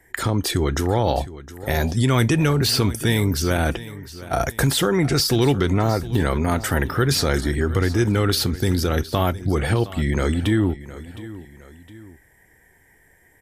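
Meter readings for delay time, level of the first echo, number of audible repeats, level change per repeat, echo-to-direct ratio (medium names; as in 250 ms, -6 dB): 713 ms, -16.5 dB, 2, -7.5 dB, -15.5 dB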